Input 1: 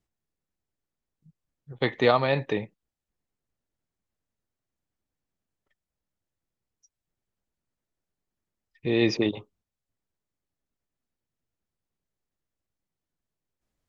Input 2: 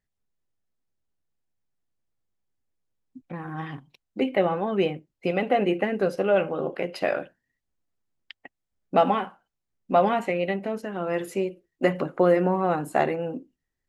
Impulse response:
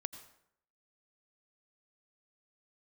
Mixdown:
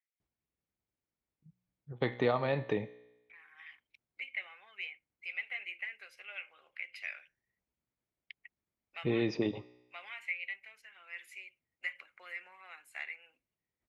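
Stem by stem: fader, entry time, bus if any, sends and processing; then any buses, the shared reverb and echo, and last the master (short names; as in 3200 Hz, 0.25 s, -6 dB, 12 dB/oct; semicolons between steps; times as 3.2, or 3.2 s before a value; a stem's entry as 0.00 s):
+2.5 dB, 0.20 s, no send, high shelf 4000 Hz -12 dB; compressor 3:1, threshold -25 dBFS, peak gain reduction 7.5 dB; resonator 61 Hz, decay 0.98 s, harmonics all, mix 50%
-16.5 dB, 0.00 s, no send, resonant high-pass 2200 Hz, resonance Q 7.4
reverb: off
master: HPF 41 Hz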